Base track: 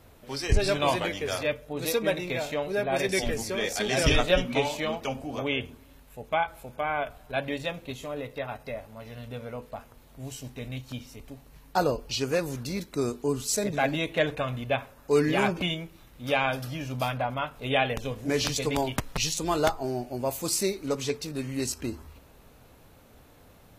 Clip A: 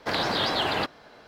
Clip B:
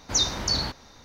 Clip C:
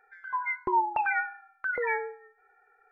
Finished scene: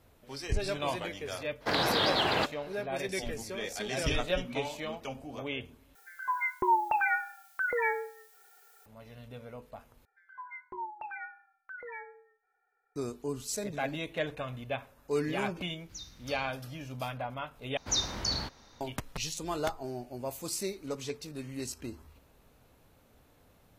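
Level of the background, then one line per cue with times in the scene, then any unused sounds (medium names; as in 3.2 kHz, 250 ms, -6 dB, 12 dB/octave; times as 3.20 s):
base track -8 dB
1.60 s: add A -2 dB, fades 0.02 s
5.95 s: replace with C -0.5 dB + added noise blue -61 dBFS
10.05 s: replace with C -14 dB + hum notches 50/100/150/200/250/300/350/400/450 Hz
15.80 s: add B -7 dB + amplifier tone stack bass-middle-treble 6-0-2
17.77 s: replace with B -6.5 dB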